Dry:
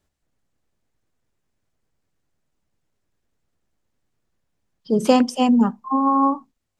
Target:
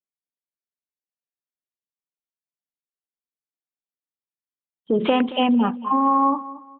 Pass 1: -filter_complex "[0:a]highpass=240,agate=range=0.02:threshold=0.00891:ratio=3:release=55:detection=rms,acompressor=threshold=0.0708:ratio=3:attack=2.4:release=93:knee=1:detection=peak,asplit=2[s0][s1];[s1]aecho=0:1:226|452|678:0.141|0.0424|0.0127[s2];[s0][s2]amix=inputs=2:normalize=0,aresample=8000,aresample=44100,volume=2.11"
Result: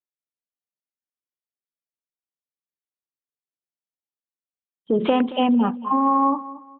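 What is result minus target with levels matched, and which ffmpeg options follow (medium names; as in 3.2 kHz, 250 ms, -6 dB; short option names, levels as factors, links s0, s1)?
2 kHz band -3.5 dB
-filter_complex "[0:a]highpass=240,adynamicequalizer=threshold=0.02:dfrequency=2500:dqfactor=0.8:tfrequency=2500:tqfactor=0.8:attack=5:release=100:ratio=0.417:range=2.5:mode=boostabove:tftype=bell,agate=range=0.02:threshold=0.00891:ratio=3:release=55:detection=rms,acompressor=threshold=0.0708:ratio=3:attack=2.4:release=93:knee=1:detection=peak,asplit=2[s0][s1];[s1]aecho=0:1:226|452|678:0.141|0.0424|0.0127[s2];[s0][s2]amix=inputs=2:normalize=0,aresample=8000,aresample=44100,volume=2.11"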